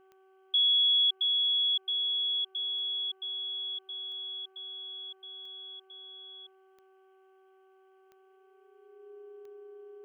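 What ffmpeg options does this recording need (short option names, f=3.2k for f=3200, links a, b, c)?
-af "adeclick=t=4,bandreject=f=381.1:t=h:w=4,bandreject=f=762.2:t=h:w=4,bandreject=f=1.1433k:t=h:w=4,bandreject=f=1.5244k:t=h:w=4,bandreject=f=410:w=30,agate=range=-21dB:threshold=-54dB"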